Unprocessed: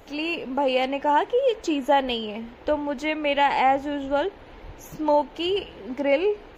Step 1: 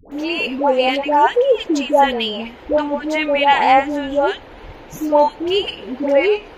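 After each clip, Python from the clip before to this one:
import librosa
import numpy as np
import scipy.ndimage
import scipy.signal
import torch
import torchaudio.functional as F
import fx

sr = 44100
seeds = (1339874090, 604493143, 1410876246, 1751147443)

y = fx.low_shelf(x, sr, hz=210.0, db=-4.0)
y = fx.dispersion(y, sr, late='highs', ms=119.0, hz=800.0)
y = y * 10.0 ** (7.5 / 20.0)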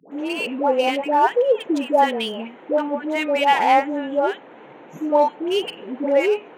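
y = fx.wiener(x, sr, points=9)
y = scipy.signal.sosfilt(scipy.signal.butter(8, 150.0, 'highpass', fs=sr, output='sos'), y)
y = y * 10.0 ** (-3.0 / 20.0)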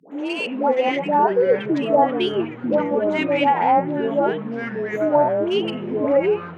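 y = fx.env_lowpass_down(x, sr, base_hz=1000.0, full_db=-11.5)
y = fx.echo_pitch(y, sr, ms=372, semitones=-5, count=3, db_per_echo=-6.0)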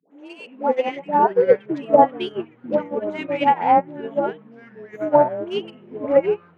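y = fx.upward_expand(x, sr, threshold_db=-27.0, expansion=2.5)
y = y * 10.0 ** (4.5 / 20.0)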